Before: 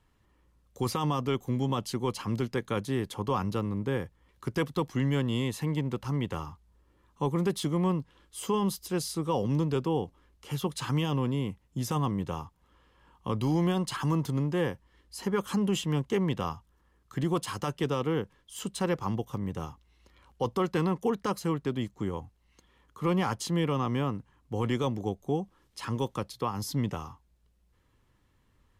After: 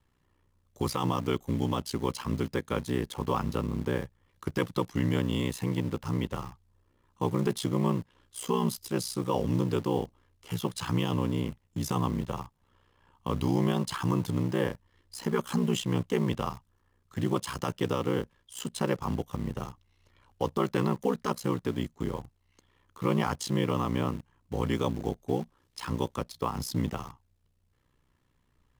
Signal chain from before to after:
ring modulation 31 Hz
in parallel at −8 dB: bit reduction 7 bits

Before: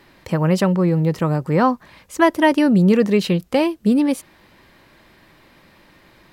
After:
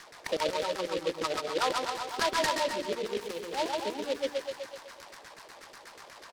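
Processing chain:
spectral magnitudes quantised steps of 30 dB
de-essing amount 65%
in parallel at −1.5 dB: brickwall limiter −12.5 dBFS, peak gain reduction 7.5 dB
on the sum: feedback echo with a high-pass in the loop 126 ms, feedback 59%, high-pass 260 Hz, level −11.5 dB
downward compressor 6 to 1, threshold −22 dBFS, peak gain reduction 14 dB
high-pass filter 190 Hz
low-shelf EQ 420 Hz −9 dB
mains-hum notches 60/120/180/240/300/360/420 Hz
auto-filter band-pass saw down 8.2 Hz 370–2,000 Hz
loudspeakers that aren't time-aligned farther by 47 metres −3 dB, 92 metres −9 dB
short delay modulated by noise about 2,900 Hz, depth 0.082 ms
level +3.5 dB

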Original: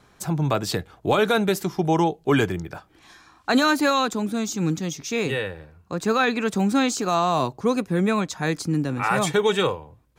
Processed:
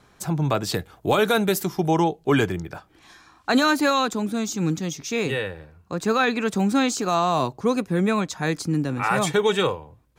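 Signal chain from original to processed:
0:00.74–0:01.91: high-shelf EQ 10,000 Hz +11 dB

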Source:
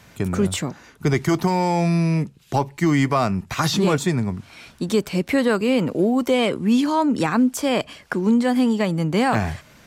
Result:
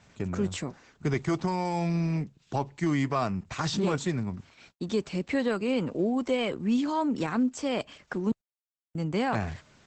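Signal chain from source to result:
0:02.93–0:05.02: noise gate −42 dBFS, range −60 dB
0:08.32–0:08.95: silence
level −8 dB
Opus 12 kbit/s 48,000 Hz

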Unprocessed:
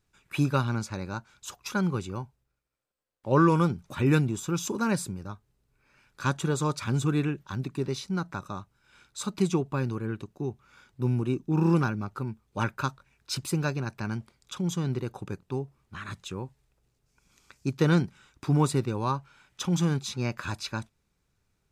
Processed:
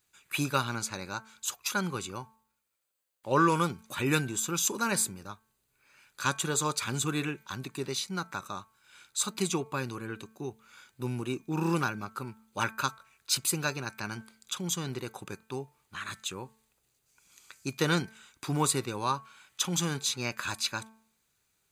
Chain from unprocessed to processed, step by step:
spectral tilt +3 dB per octave
notch filter 5,400 Hz, Q 7.3
hum removal 221.6 Hz, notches 11

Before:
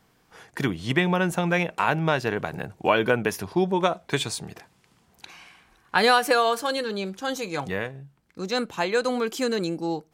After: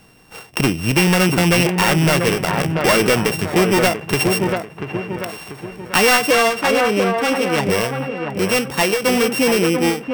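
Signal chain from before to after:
samples sorted by size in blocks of 16 samples
0:06.31–0:07.70: high-shelf EQ 6,200 Hz −10 dB
in parallel at 0 dB: downward compressor, threshold −29 dBFS, peak gain reduction 14 dB
on the sum: delay with a low-pass on its return 689 ms, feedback 44%, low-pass 1,800 Hz, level −6 dB
gain into a clipping stage and back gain 17 dB
every ending faded ahead of time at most 140 dB per second
level +7 dB

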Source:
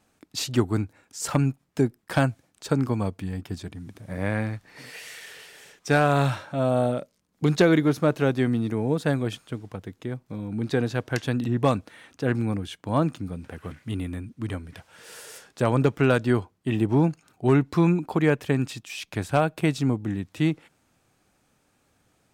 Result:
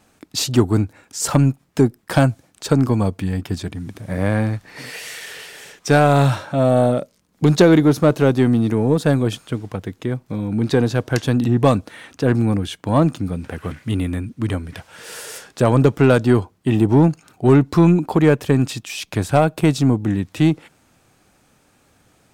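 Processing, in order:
dynamic equaliser 2,100 Hz, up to −5 dB, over −42 dBFS, Q 1
in parallel at −3.5 dB: soft clipping −22 dBFS, distortion −8 dB
on the sum: level +5 dB

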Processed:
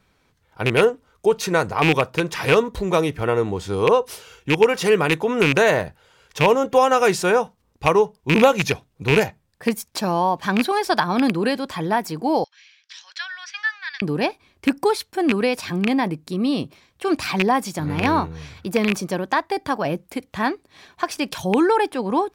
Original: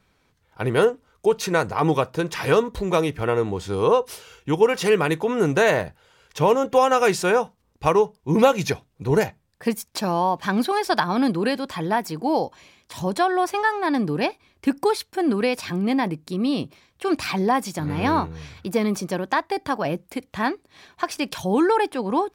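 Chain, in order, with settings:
loose part that buzzes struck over −22 dBFS, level −9 dBFS
0:12.44–0:14.02: elliptic band-pass filter 1,600–5,700 Hz, stop band 80 dB
level +1.5 dB

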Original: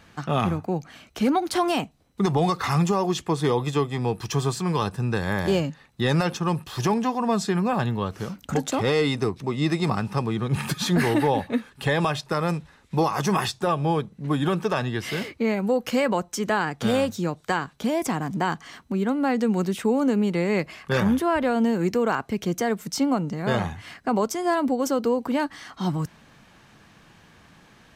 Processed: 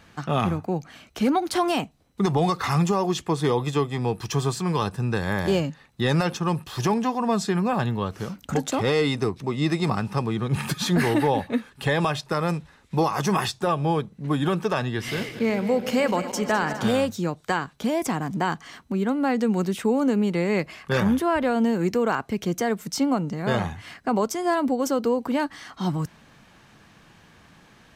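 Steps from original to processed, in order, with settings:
0:14.88–0:16.89: feedback delay that plays each chunk backwards 103 ms, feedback 79%, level −12 dB

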